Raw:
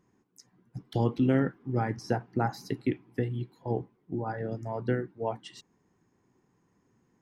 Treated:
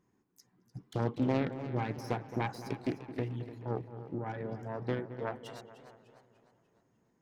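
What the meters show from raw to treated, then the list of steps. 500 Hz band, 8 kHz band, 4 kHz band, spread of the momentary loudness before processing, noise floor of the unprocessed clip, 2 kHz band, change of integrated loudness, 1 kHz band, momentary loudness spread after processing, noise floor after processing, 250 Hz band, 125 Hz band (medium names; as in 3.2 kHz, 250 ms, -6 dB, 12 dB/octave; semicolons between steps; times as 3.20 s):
-4.5 dB, -5.0 dB, -3.0 dB, 10 LU, -72 dBFS, -3.5 dB, -5.0 dB, -4.5 dB, 16 LU, -74 dBFS, -5.5 dB, -5.0 dB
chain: self-modulated delay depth 0.42 ms; feedback echo behind a low-pass 218 ms, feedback 54%, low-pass 2.1 kHz, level -13 dB; modulated delay 299 ms, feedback 46%, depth 107 cents, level -14 dB; trim -5 dB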